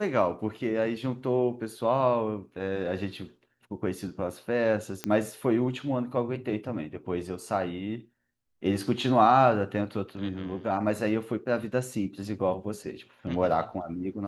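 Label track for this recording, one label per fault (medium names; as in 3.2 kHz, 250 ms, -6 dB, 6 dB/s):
5.040000	5.040000	pop -14 dBFS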